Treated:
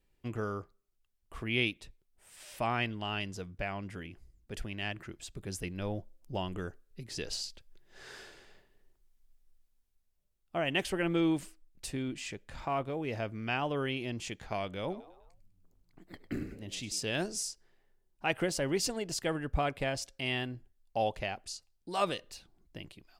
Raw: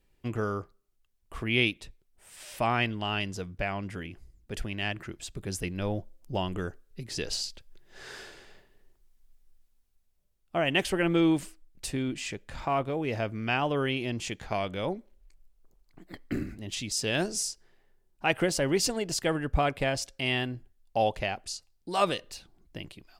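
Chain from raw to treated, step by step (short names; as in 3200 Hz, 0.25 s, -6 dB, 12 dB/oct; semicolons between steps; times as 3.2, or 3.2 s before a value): 14.8–17.03 frequency-shifting echo 0.1 s, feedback 48%, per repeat +82 Hz, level -15 dB; gain -5 dB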